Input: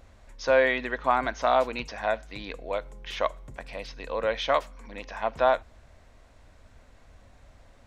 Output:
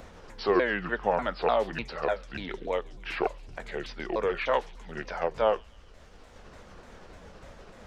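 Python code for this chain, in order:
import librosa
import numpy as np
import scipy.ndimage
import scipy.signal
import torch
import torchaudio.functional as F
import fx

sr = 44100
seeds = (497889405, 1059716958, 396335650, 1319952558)

y = fx.pitch_ramps(x, sr, semitones=-7.0, every_ms=297)
y = fx.echo_wet_highpass(y, sr, ms=138, feedback_pct=51, hz=4300.0, wet_db=-11.0)
y = fx.band_squash(y, sr, depth_pct=40)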